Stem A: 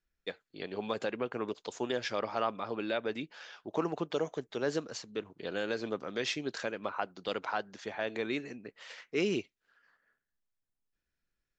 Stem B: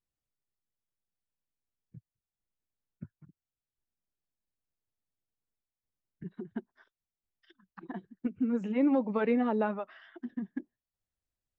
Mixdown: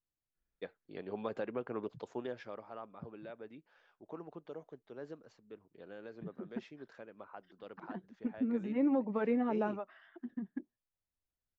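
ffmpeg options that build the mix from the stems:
-filter_complex "[0:a]highshelf=f=2800:g=-10,adelay=350,volume=0.708,afade=t=out:st=1.99:d=0.64:silence=0.298538[s0];[1:a]volume=0.631[s1];[s0][s1]amix=inputs=2:normalize=0,highshelf=f=3200:g=-10"

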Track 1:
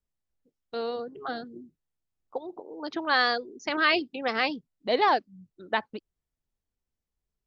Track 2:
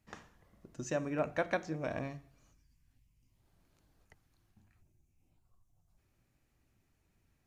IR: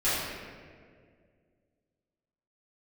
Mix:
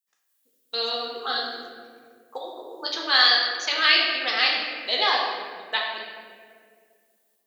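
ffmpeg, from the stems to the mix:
-filter_complex "[0:a]highshelf=f=4200:g=-9,dynaudnorm=f=160:g=3:m=6.31,aexciter=amount=2.6:drive=0.9:freq=3100,volume=1.06,asplit=2[s0][s1];[s1]volume=0.447[s2];[1:a]volume=0.224,asplit=2[s3][s4];[s4]volume=0.178[s5];[2:a]atrim=start_sample=2205[s6];[s2][s5]amix=inputs=2:normalize=0[s7];[s7][s6]afir=irnorm=-1:irlink=0[s8];[s0][s3][s8]amix=inputs=3:normalize=0,aderivative"

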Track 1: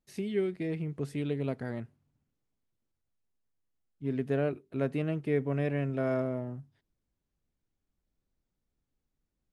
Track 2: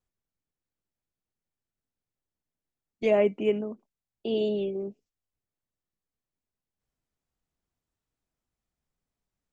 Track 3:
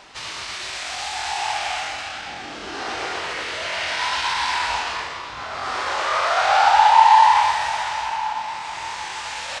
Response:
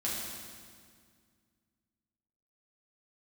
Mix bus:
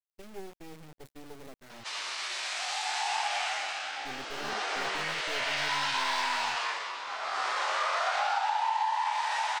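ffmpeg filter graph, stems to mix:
-filter_complex "[0:a]highpass=f=130:p=1,acrusher=bits=4:dc=4:mix=0:aa=0.000001,agate=range=0.0708:threshold=0.00891:ratio=16:detection=peak,volume=0.398,asplit=2[s0][s1];[1:a]adelay=150,volume=0.119[s2];[2:a]highpass=520,flanger=delay=8.4:depth=6:regen=51:speed=0.61:shape=sinusoidal,acompressor=threshold=0.0562:ratio=12,adelay=1700,volume=0.944[s3];[s1]apad=whole_len=426791[s4];[s2][s4]sidechaingate=range=0.0224:threshold=0.00282:ratio=16:detection=peak[s5];[s0][s5][s3]amix=inputs=3:normalize=0"

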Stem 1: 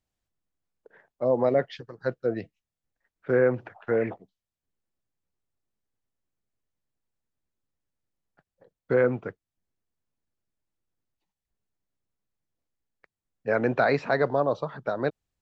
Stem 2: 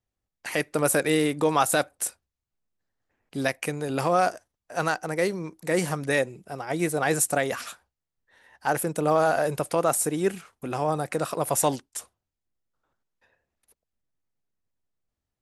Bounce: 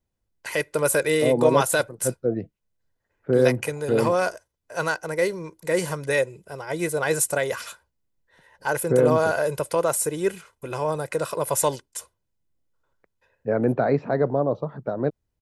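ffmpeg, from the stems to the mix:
-filter_complex "[0:a]tiltshelf=f=970:g=9.5,volume=0.708[s0];[1:a]aecho=1:1:2:0.59,volume=0.944[s1];[s0][s1]amix=inputs=2:normalize=0"

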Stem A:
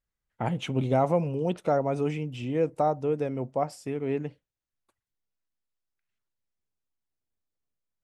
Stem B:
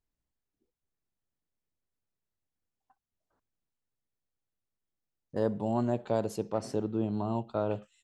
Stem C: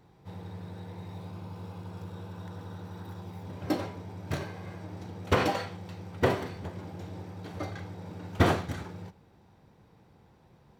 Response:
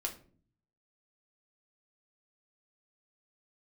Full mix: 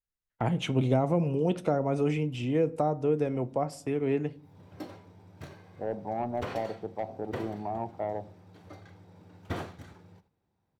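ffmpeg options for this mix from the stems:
-filter_complex "[0:a]agate=range=0.282:threshold=0.00708:ratio=16:detection=peak,volume=0.944,asplit=3[s0][s1][s2];[s1]volume=0.376[s3];[1:a]lowpass=f=780:t=q:w=4.9,asoftclip=type=tanh:threshold=0.158,adelay=450,volume=0.376,asplit=2[s4][s5];[s5]volume=0.316[s6];[2:a]agate=range=0.447:threshold=0.00251:ratio=16:detection=peak,adelay=1100,volume=0.251[s7];[s2]apad=whole_len=524508[s8];[s7][s8]sidechaincompress=threshold=0.00708:ratio=8:attack=44:release=338[s9];[3:a]atrim=start_sample=2205[s10];[s3][s6]amix=inputs=2:normalize=0[s11];[s11][s10]afir=irnorm=-1:irlink=0[s12];[s0][s4][s9][s12]amix=inputs=4:normalize=0,acrossover=split=370[s13][s14];[s14]acompressor=threshold=0.0398:ratio=4[s15];[s13][s15]amix=inputs=2:normalize=0"

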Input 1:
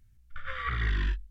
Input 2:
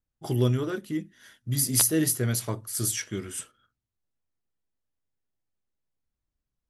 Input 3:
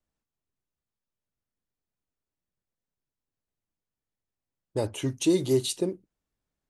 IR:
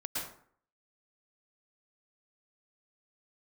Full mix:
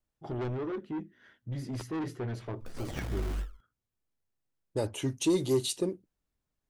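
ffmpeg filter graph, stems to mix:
-filter_complex "[0:a]acrusher=samples=34:mix=1:aa=0.000001:lfo=1:lforange=20.4:lforate=3.3,adelay=2300,volume=0.562[s0];[1:a]lowpass=2200,adynamicequalizer=threshold=0.0112:dfrequency=370:dqfactor=1.9:tfrequency=370:tqfactor=1.9:attack=5:release=100:ratio=0.375:range=3.5:mode=boostabove:tftype=bell,asoftclip=type=tanh:threshold=0.0447,volume=0.631[s1];[2:a]volume=0.794[s2];[s0][s1][s2]amix=inputs=3:normalize=0,asoftclip=type=tanh:threshold=0.133"

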